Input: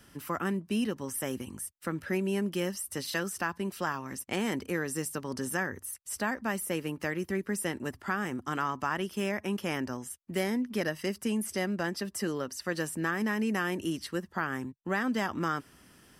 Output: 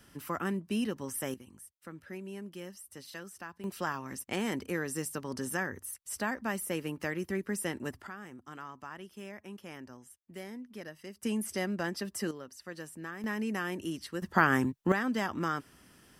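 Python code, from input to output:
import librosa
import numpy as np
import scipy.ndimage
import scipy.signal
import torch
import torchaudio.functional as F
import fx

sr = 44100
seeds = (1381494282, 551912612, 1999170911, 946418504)

y = fx.gain(x, sr, db=fx.steps((0.0, -2.0), (1.34, -12.5), (3.64, -2.0), (8.07, -13.5), (11.23, -2.0), (12.31, -11.0), (13.24, -4.0), (14.22, 8.0), (14.92, -1.5)))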